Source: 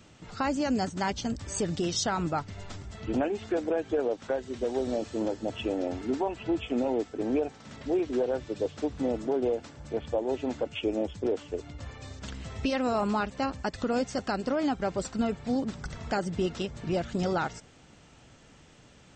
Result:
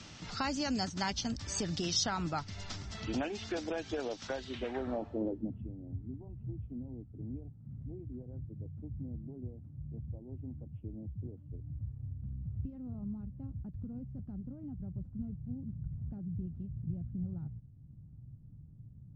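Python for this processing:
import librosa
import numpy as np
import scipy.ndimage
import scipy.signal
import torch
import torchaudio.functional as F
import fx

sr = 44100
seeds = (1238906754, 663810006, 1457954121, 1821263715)

y = fx.filter_sweep_lowpass(x, sr, from_hz=5400.0, to_hz=120.0, start_s=4.36, end_s=5.74, q=2.3)
y = fx.peak_eq(y, sr, hz=460.0, db=-6.5, octaves=1.1)
y = fx.band_squash(y, sr, depth_pct=40)
y = F.gain(torch.from_numpy(y), -3.0).numpy()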